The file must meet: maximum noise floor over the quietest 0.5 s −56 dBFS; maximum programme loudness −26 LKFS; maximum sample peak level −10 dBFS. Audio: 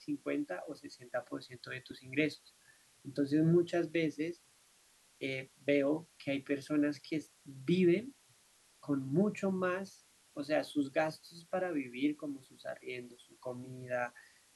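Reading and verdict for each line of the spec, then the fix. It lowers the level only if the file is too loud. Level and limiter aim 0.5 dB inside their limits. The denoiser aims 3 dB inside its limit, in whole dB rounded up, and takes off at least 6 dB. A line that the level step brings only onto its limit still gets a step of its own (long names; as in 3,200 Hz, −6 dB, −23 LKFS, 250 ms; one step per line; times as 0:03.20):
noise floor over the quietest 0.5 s −67 dBFS: in spec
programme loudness −36.0 LKFS: in spec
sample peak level −17.5 dBFS: in spec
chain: no processing needed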